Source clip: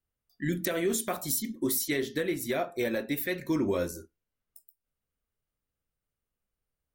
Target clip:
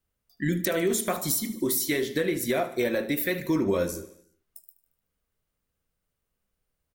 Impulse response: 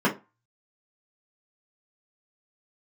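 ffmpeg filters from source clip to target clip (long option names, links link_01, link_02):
-filter_complex "[0:a]acompressor=threshold=-31dB:ratio=2,aecho=1:1:75|150|225|300|375:0.168|0.0923|0.0508|0.0279|0.0154,asplit=2[link_01][link_02];[1:a]atrim=start_sample=2205[link_03];[link_02][link_03]afir=irnorm=-1:irlink=0,volume=-32dB[link_04];[link_01][link_04]amix=inputs=2:normalize=0,volume=6dB"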